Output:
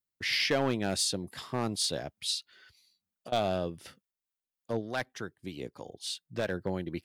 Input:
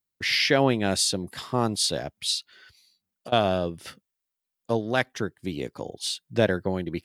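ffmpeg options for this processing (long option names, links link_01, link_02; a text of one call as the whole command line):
ffmpeg -i in.wav -filter_complex "[0:a]asoftclip=type=hard:threshold=-15dB,asettb=1/sr,asplit=3[link_01][link_02][link_03];[link_01]atrim=end=3.874[link_04];[link_02]atrim=start=3.87:end=6.62,asetpts=PTS-STARTPTS,afade=type=in:duration=0.004:curve=qsin,afade=type=out:start_time=2.746:duration=0.004:curve=qsin,acrossover=split=750[link_05][link_06];[link_05]aeval=exprs='val(0)*(1-0.5/2+0.5/2*cos(2*PI*3.3*n/s))':channel_layout=same[link_07];[link_06]aeval=exprs='val(0)*(1-0.5/2-0.5/2*cos(2*PI*3.3*n/s))':channel_layout=same[link_08];[link_07][link_08]amix=inputs=2:normalize=0[link_09];[link_03]atrim=start=6.616[link_10];[link_04][link_09]acrossfade=duration=0.004:curve1=hsin:curve2=qsin[link_11];[link_11][link_10]acrossfade=duration=0.004:curve1=qsin:curve2=hsin,volume=-5.5dB" out.wav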